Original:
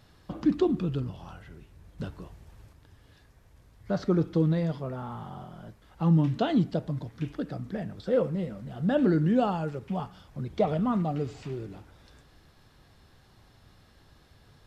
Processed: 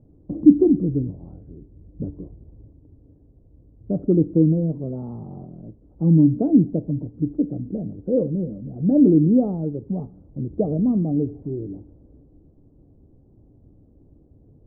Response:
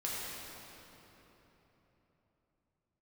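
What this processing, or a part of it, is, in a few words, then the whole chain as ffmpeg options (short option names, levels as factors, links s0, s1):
under water: -filter_complex "[0:a]lowpass=f=510:w=0.5412,lowpass=f=510:w=1.3066,equalizer=f=290:t=o:w=0.34:g=9,asettb=1/sr,asplit=3[s0][s1][s2];[s0]atrim=end=4.934[s3];[s1]atrim=start=4.93:end=5.46,asetpts=PTS-STARTPTS,afade=t=in:d=0.004:c=qsin,afade=t=out:st=0.526:d=0.004:c=qsin,equalizer=f=1000:t=o:w=1.3:g=5.5[s4];[s2]atrim=start=5.456[s5];[s3][s4]acrossfade=d=0.004:c1=hsin:c2=qsin[s6];[s6][s5]acrossfade=d=0.004:c1=qsin:c2=hsin,volume=1.88"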